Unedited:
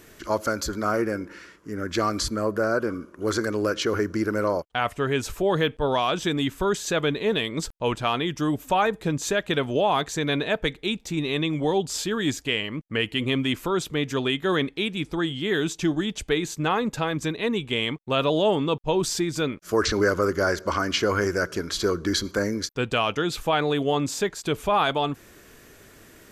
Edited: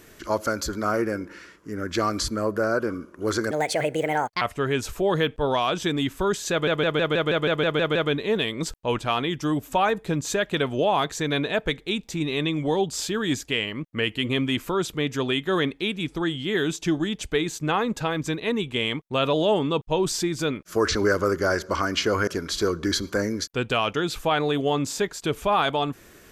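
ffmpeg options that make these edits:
-filter_complex "[0:a]asplit=13[a][b][c][d][e][f][g][h][i][j][k][l][m];[a]atrim=end=3.514[n];[b]atrim=start=3.51:end=4.82,asetpts=PTS-STARTPTS,asetrate=63945,aresample=44100,atrim=end_sample=39842,asetpts=PTS-STARTPTS[o];[c]atrim=start=4.816:end=7.082[p];[d]atrim=start=6.918:end=7.082[q];[e]atrim=start=6.918:end=7.082[r];[f]atrim=start=6.918:end=7.082[s];[g]atrim=start=6.918:end=7.082[t];[h]atrim=start=6.918:end=7.082[u];[i]atrim=start=6.918:end=7.082[v];[j]atrim=start=6.918:end=7.082[w];[k]atrim=start=6.918:end=7.082[x];[l]atrim=start=6.918:end=21.242[y];[m]atrim=start=21.488[z];[n][o]acrossfade=d=0.004:c1=hsin:c2=hsin[aa];[aa][p]acrossfade=d=0.004:c1=hsin:c2=hsin[ab];[ab][q]acrossfade=d=0.004:c1=hsin:c2=hsin[ac];[ac][r]acrossfade=d=0.004:c1=hsin:c2=hsin[ad];[ad][s]acrossfade=d=0.004:c1=hsin:c2=hsin[ae];[ae][t]acrossfade=d=0.004:c1=hsin:c2=hsin[af];[af][u]acrossfade=d=0.004:c1=hsin:c2=hsin[ag];[ag][v]acrossfade=d=0.004:c1=hsin:c2=hsin[ah];[ah][w]acrossfade=d=0.004:c1=hsin:c2=hsin[ai];[ai][x]acrossfade=d=0.004:c1=hsin:c2=hsin[aj];[aj][y]acrossfade=d=0.004:c1=hsin:c2=hsin[ak];[ak][z]acrossfade=d=0.004:c1=hsin:c2=hsin"

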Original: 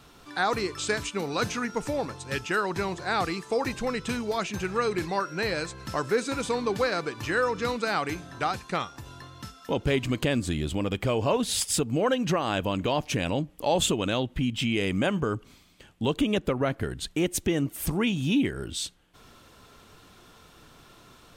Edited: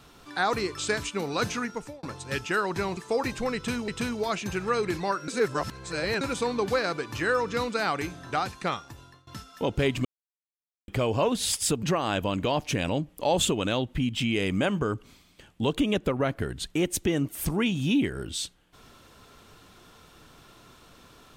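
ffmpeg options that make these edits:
-filter_complex "[0:a]asplit=10[a][b][c][d][e][f][g][h][i][j];[a]atrim=end=2.03,asetpts=PTS-STARTPTS,afade=t=out:st=1.59:d=0.44[k];[b]atrim=start=2.03:end=2.972,asetpts=PTS-STARTPTS,afade=t=in:d=0.004:c=hsin[l];[c]atrim=start=3.378:end=4.292[m];[d]atrim=start=3.958:end=5.362[n];[e]atrim=start=5.358:end=6.292,asetpts=PTS-STARTPTS,areverse[o];[f]atrim=start=6.288:end=9.35,asetpts=PTS-STARTPTS,afade=t=out:st=2.572:d=0.49:silence=0.0944061[p];[g]atrim=start=9.35:end=10.13,asetpts=PTS-STARTPTS,afade=t=in:d=0.004:c=hsin:silence=0.0944061,afade=t=out:st=0.776:d=0.004:c=hsin[q];[h]atrim=start=10.13:end=10.96,asetpts=PTS-STARTPTS,volume=0[r];[i]atrim=start=10.96:end=11.912,asetpts=PTS-STARTPTS,afade=t=in:d=0.004:c=hsin[s];[j]atrim=start=12.238[t];[k][l]concat=n=2:v=0:a=1[u];[u][m]acrossfade=d=0.004:c1=hsin:c2=hsin[v];[v][n]acrossfade=d=0.004:c1=hsin:c2=hsin[w];[w][o]acrossfade=d=0.004:c1=hsin:c2=hsin[x];[p][q][r][s]concat=n=4:v=0:a=1[y];[x][y]acrossfade=d=0.004:c1=hsin:c2=hsin[z];[z][t]acrossfade=d=0.004:c1=hsin:c2=hsin"

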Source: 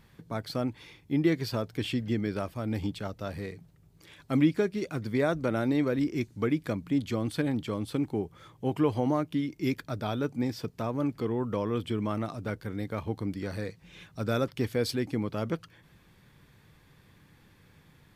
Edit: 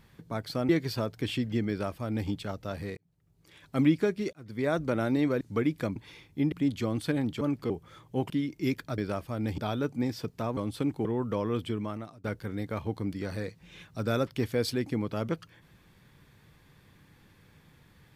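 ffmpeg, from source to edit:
-filter_complex "[0:a]asplit=15[a][b][c][d][e][f][g][h][i][j][k][l][m][n][o];[a]atrim=end=0.692[p];[b]atrim=start=1.248:end=3.53,asetpts=PTS-STARTPTS,afade=t=out:st=2.278:d=0.004:c=hsin[q];[c]atrim=start=3.53:end=4.89,asetpts=PTS-STARTPTS,afade=t=in:d=0.83,afade=t=out:st=1.356:d=0.004:c=hsin[r];[d]atrim=start=4.89:end=5.972,asetpts=PTS-STARTPTS,afade=t=in:d=0.43[s];[e]atrim=start=6.268:end=6.822[t];[f]atrim=start=0.688:end=1.252[u];[g]atrim=start=6.818:end=7.712[v];[h]atrim=start=10.968:end=11.262[w];[i]atrim=start=8.188:end=8.792[x];[j]atrim=start=9.298:end=9.982[y];[k]atrim=start=2.248:end=2.852[z];[l]atrim=start=9.978:end=10.972[aa];[m]atrim=start=7.708:end=8.192[ab];[n]atrim=start=11.258:end=12.45,asetpts=PTS-STARTPTS,afade=t=out:st=0.572:d=0.62:silence=0.0891251[ac];[o]atrim=start=12.45,asetpts=PTS-STARTPTS,afade=t=in:d=0.004:c=hsin:silence=0.0891251[ad];[q][r][s]concat=n=3:v=0:a=1[ae];[p][ae]acrossfade=d=0.004:c1=hsin:c2=hsin[af];[af][t]acrossfade=d=0.004:c1=hsin:c2=hsin[ag];[ag][u]acrossfade=d=0.004:c1=hsin:c2=hsin[ah];[ah][v]acrossfade=d=0.004:c1=hsin:c2=hsin[ai];[ai][w]acrossfade=d=0.004:c1=hsin:c2=hsin[aj];[aj][x]acrossfade=d=0.004:c1=hsin:c2=hsin[ak];[ak][y]acrossfade=d=0.004:c1=hsin:c2=hsin[al];[al][z]acrossfade=d=0.004:c1=hsin:c2=hsin[am];[am][aa]acrossfade=d=0.004:c1=hsin:c2=hsin[an];[an][ab]acrossfade=d=0.004:c1=hsin:c2=hsin[ao];[ac][ad]concat=n=2:v=0:a=1[ap];[ao][ap]acrossfade=d=0.004:c1=hsin:c2=hsin"

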